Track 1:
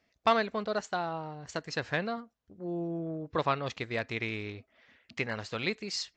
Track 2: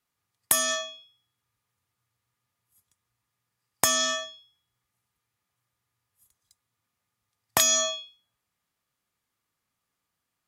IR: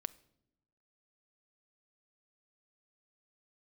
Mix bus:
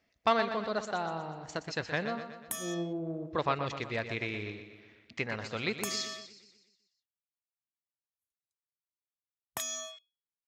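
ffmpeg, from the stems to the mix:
-filter_complex "[0:a]volume=-1.5dB,asplit=2[a][b];[b]volume=-9.5dB[c];[1:a]afwtdn=0.00891,bandreject=f=4.6k:w=5.5,adelay=2000,volume=-15dB[d];[c]aecho=0:1:122|244|366|488|610|732|854|976:1|0.54|0.292|0.157|0.085|0.0459|0.0248|0.0134[e];[a][d][e]amix=inputs=3:normalize=0"

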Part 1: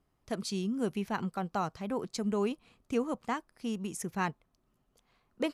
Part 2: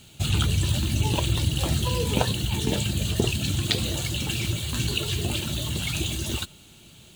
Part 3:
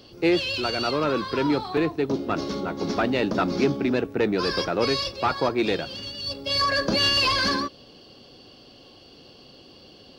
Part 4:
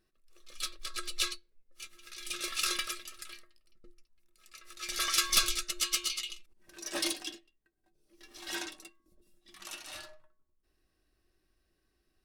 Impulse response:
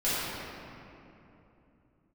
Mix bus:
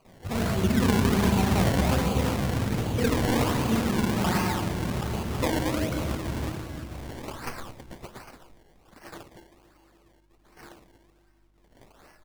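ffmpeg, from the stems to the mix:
-filter_complex "[0:a]volume=0.5dB,asplit=3[a][b][c];[a]atrim=end=1.95,asetpts=PTS-STARTPTS,afade=t=out:st=1.946:d=0.004:c=hsin[d];[b]atrim=start=1.95:end=2.98,asetpts=PTS-STARTPTS,volume=0[e];[c]atrim=start=2.98,asetpts=PTS-STARTPTS,afade=t=in:d=0.004:c=hsin[f];[d][e][f]concat=n=3:v=0:a=1,asplit=3[g][h][i];[h]volume=-5dB[j];[1:a]adelay=50,volume=-5dB,asplit=2[k][l];[l]volume=-12.5dB[m];[2:a]highpass=1k,asoftclip=type=tanh:threshold=-28dB,volume=-10.5dB[n];[3:a]aeval=exprs='val(0)+0.00141*(sin(2*PI*50*n/s)+sin(2*PI*2*50*n/s)/2+sin(2*PI*3*50*n/s)/3+sin(2*PI*4*50*n/s)/4+sin(2*PI*5*50*n/s)/5)':c=same,adelay=2100,volume=-11.5dB,asplit=2[o][p];[p]volume=-17dB[q];[i]apad=whole_len=449247[r];[n][r]sidechaincompress=threshold=-47dB:ratio=8:attack=16:release=1480[s];[g][k][s]amix=inputs=3:normalize=0,acompressor=threshold=-44dB:ratio=2,volume=0dB[t];[4:a]atrim=start_sample=2205[u];[j][m][q]amix=inputs=3:normalize=0[v];[v][u]afir=irnorm=-1:irlink=0[w];[o][t][w]amix=inputs=3:normalize=0,acrusher=samples=24:mix=1:aa=0.000001:lfo=1:lforange=24:lforate=1.3"

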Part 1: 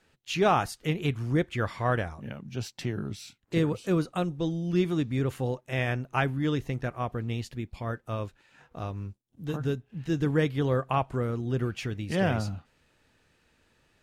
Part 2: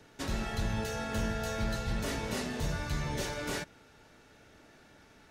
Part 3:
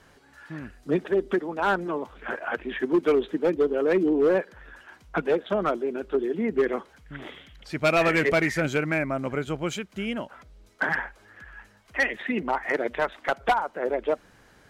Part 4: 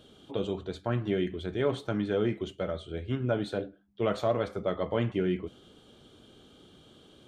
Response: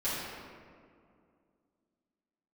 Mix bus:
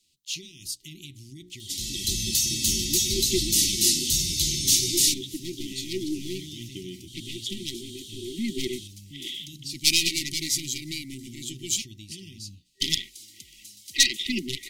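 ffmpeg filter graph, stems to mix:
-filter_complex "[0:a]highshelf=f=5.1k:g=-7,bandreject=f=60:t=h:w=6,bandreject=f=120:t=h:w=6,bandreject=f=180:t=h:w=6,bandreject=f=240:t=h:w=6,bandreject=f=300:t=h:w=6,bandreject=f=360:t=h:w=6,alimiter=level_in=0.5dB:limit=-24dB:level=0:latency=1:release=52,volume=-0.5dB,volume=-11dB,asplit=2[a][b];[1:a]dynaudnorm=f=210:g=5:m=10.5dB,adelay=1500,volume=-10.5dB[c];[2:a]highpass=110,aeval=exprs='(tanh(7.08*val(0)+0.6)-tanh(0.6))/7.08':c=same,adelay=2000,volume=2dB,asplit=3[d][e][f];[d]atrim=end=11.82,asetpts=PTS-STARTPTS,afade=t=out:st=11.816:d=0.004:c=hsin[g];[e]atrim=start=11.82:end=12.8,asetpts=PTS-STARTPTS,volume=0[h];[f]atrim=start=12.8,asetpts=PTS-STARTPTS,afade=t=in:d=0.004:c=hsin[i];[g][h][i]concat=n=3:v=0:a=1[j];[3:a]acompressor=threshold=-37dB:ratio=6,adelay=1600,volume=1dB[k];[b]apad=whole_len=736258[l];[j][l]sidechaincompress=threshold=-47dB:ratio=12:attack=6.5:release=316[m];[a][c][m][k]amix=inputs=4:normalize=0,afftfilt=real='re*(1-between(b*sr/4096,390,1900))':imag='im*(1-between(b*sr/4096,390,1900))':win_size=4096:overlap=0.75,aexciter=amount=11.7:drive=5:freq=3.2k"

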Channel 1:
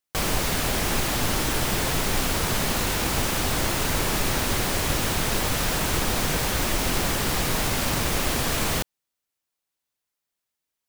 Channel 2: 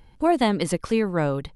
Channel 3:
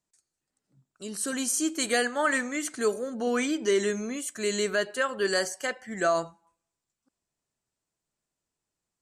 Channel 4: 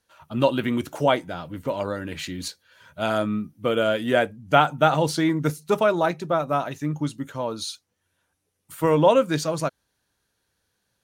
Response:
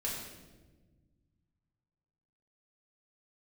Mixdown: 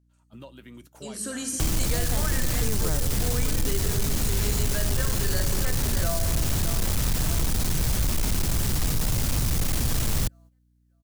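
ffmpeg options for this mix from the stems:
-filter_complex "[0:a]bass=f=250:g=13,treble=f=4k:g=6,asoftclip=type=tanh:threshold=-14dB,adelay=1450,volume=-0.5dB[a];[1:a]adelay=1700,volume=2dB[b];[2:a]volume=-4dB,asplit=3[c][d][e];[d]volume=-4.5dB[f];[e]volume=-6dB[g];[3:a]highshelf=f=4.6k:g=9,acompressor=threshold=-27dB:ratio=5,volume=-15dB,asplit=2[h][i];[i]apad=whole_len=143506[j];[b][j]sidechaincompress=threshold=-54dB:ratio=8:attack=16:release=390[k];[4:a]atrim=start_sample=2205[l];[f][l]afir=irnorm=-1:irlink=0[m];[g]aecho=0:1:610|1220|1830|2440|3050|3660|4270|4880:1|0.52|0.27|0.141|0.0731|0.038|0.0198|0.0103[n];[a][k][c][h][m][n]amix=inputs=6:normalize=0,acrossover=split=110|4000[o][p][q];[o]acompressor=threshold=-22dB:ratio=4[r];[p]acompressor=threshold=-31dB:ratio=4[s];[q]acompressor=threshold=-29dB:ratio=4[t];[r][s][t]amix=inputs=3:normalize=0,aeval=exprs='val(0)+0.00224*(sin(2*PI*60*n/s)+sin(2*PI*2*60*n/s)/2+sin(2*PI*3*60*n/s)/3+sin(2*PI*4*60*n/s)/4+sin(2*PI*5*60*n/s)/5)':c=same,agate=range=-10dB:threshold=-48dB:ratio=16:detection=peak"

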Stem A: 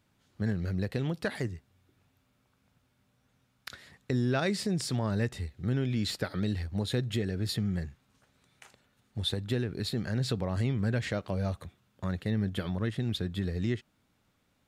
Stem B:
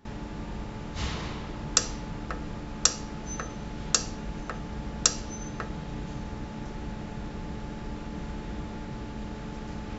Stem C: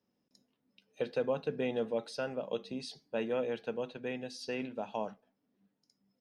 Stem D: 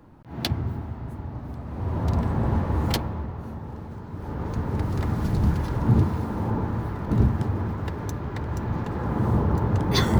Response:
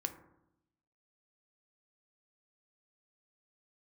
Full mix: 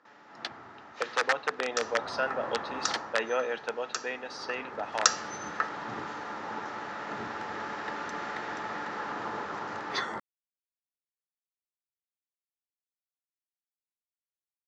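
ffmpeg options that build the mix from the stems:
-filter_complex "[1:a]volume=-1dB,afade=t=in:st=4.82:d=0.21:silence=0.237137[a];[2:a]aeval=exprs='(mod(15*val(0)+1,2)-1)/15':c=same,volume=1.5dB[b];[3:a]volume=-10dB[c];[a][b][c]amix=inputs=3:normalize=0,dynaudnorm=f=550:g=9:m=11.5dB,highpass=480,equalizer=f=800:t=q:w=4:g=3,equalizer=f=1.3k:t=q:w=4:g=9,equalizer=f=1.8k:t=q:w=4:g=8,lowpass=f=6.5k:w=0.5412,lowpass=f=6.5k:w=1.3066"

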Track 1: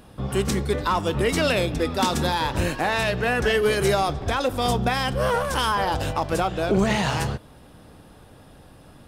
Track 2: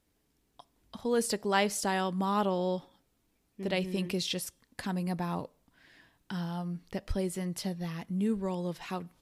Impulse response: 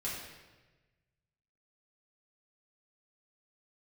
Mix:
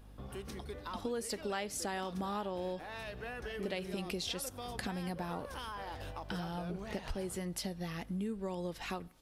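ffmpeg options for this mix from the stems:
-filter_complex "[0:a]equalizer=f=7.5k:t=o:w=0.31:g=-9.5,acompressor=threshold=-29dB:ratio=2.5,aeval=exprs='val(0)+0.0112*(sin(2*PI*50*n/s)+sin(2*PI*2*50*n/s)/2+sin(2*PI*3*50*n/s)/3+sin(2*PI*4*50*n/s)/4+sin(2*PI*5*50*n/s)/5)':c=same,volume=-13.5dB[a];[1:a]bandreject=f=1k:w=12,volume=2dB[b];[a][b]amix=inputs=2:normalize=0,equalizer=f=150:t=o:w=0.92:g=-5.5,acompressor=threshold=-35dB:ratio=6"

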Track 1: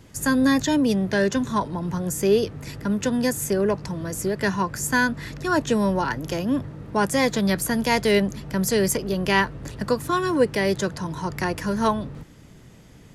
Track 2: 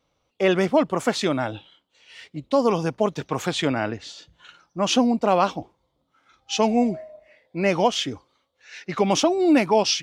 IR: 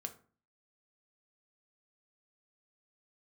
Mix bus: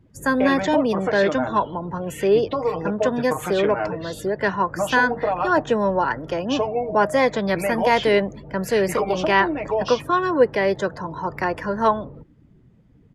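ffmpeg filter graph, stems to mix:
-filter_complex "[0:a]volume=-4.5dB[a];[1:a]aecho=1:1:6.5:0.88,acompressor=threshold=-26dB:ratio=6,volume=-6.5dB,asplit=2[b][c];[c]volume=-3.5dB[d];[2:a]atrim=start_sample=2205[e];[d][e]afir=irnorm=-1:irlink=0[f];[a][b][f]amix=inputs=3:normalize=0,afftdn=nr=19:nf=-46,firequalizer=gain_entry='entry(170,0);entry(550,10);entry(6200,-5)':delay=0.05:min_phase=1"

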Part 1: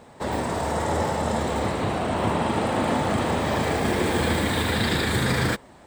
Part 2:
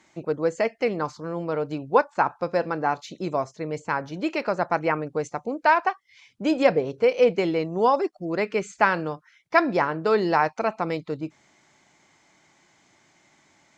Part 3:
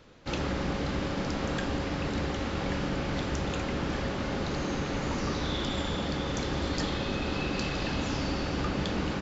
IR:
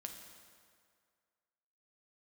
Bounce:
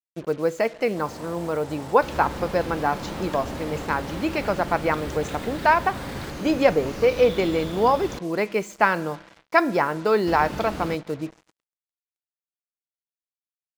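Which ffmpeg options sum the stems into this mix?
-filter_complex "[0:a]alimiter=limit=-17dB:level=0:latency=1:release=24,adelay=750,volume=-12.5dB[a];[1:a]volume=-0.5dB,asplit=3[b][c][d];[c]volume=-10.5dB[e];[2:a]adelay=1750,volume=-3dB,asplit=3[f][g][h];[f]atrim=end=8.19,asetpts=PTS-STARTPTS,afade=t=out:st=8.186:d=0.004:c=hsin[i];[g]atrim=start=8.19:end=10.27,asetpts=PTS-STARTPTS,volume=0[j];[h]atrim=start=10.27,asetpts=PTS-STARTPTS,afade=t=in:d=0.004:c=hsin[k];[i][j][k]concat=n=3:v=0:a=1[l];[d]apad=whole_len=291718[m];[a][m]sidechaincompress=threshold=-27dB:ratio=8:attack=16:release=154[n];[3:a]atrim=start_sample=2205[o];[e][o]afir=irnorm=-1:irlink=0[p];[n][b][l][p]amix=inputs=4:normalize=0,acrusher=bits=6:mix=0:aa=0.5"

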